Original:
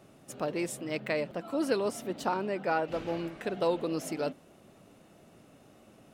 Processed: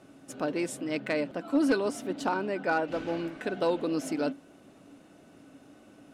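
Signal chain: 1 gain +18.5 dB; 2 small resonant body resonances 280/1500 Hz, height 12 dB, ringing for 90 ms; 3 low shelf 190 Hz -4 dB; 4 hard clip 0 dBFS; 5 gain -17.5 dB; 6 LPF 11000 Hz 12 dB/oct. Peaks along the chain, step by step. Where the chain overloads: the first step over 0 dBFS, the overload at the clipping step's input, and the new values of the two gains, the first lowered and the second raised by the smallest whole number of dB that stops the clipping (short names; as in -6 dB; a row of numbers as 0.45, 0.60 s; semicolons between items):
+3.0, +6.0, +5.0, 0.0, -17.5, -17.0 dBFS; step 1, 5.0 dB; step 1 +13.5 dB, step 5 -12.5 dB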